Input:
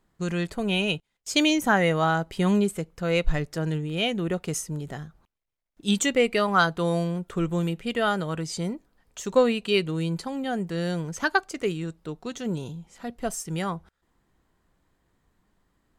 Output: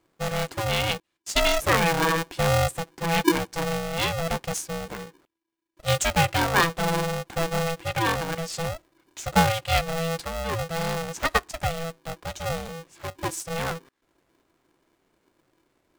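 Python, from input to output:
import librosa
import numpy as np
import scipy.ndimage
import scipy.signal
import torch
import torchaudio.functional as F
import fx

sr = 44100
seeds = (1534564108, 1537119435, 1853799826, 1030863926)

y = x * np.sign(np.sin(2.0 * np.pi * 330.0 * np.arange(len(x)) / sr))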